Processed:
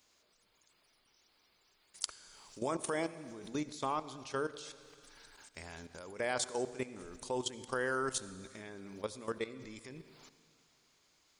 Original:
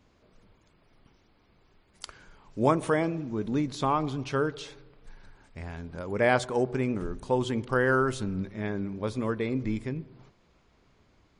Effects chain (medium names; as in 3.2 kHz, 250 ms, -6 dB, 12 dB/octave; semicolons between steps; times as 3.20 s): tone controls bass -9 dB, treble +14 dB; level held to a coarse grid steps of 15 dB; on a send at -16 dB: reverberation RT60 1.9 s, pre-delay 62 ms; on the sum: tape noise reduction on one side only encoder only; trim -4 dB